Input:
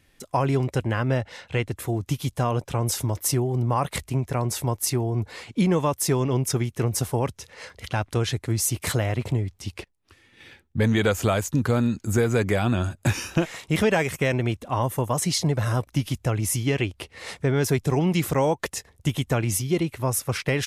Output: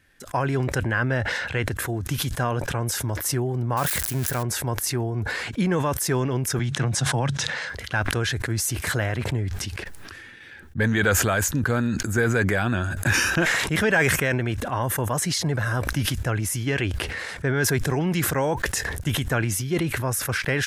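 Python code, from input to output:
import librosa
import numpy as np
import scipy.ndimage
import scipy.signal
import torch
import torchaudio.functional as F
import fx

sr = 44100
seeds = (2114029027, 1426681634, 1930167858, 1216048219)

y = fx.crossing_spikes(x, sr, level_db=-20.5, at=(3.77, 4.43))
y = fx.cabinet(y, sr, low_hz=110.0, low_slope=24, high_hz=8500.0, hz=(140.0, 410.0, 760.0, 3600.0), db=(8, -9, 3, 7), at=(6.59, 7.7))
y = fx.peak_eq(y, sr, hz=1600.0, db=12.5, octaves=0.39)
y = fx.sustainer(y, sr, db_per_s=24.0)
y = F.gain(torch.from_numpy(y), -2.5).numpy()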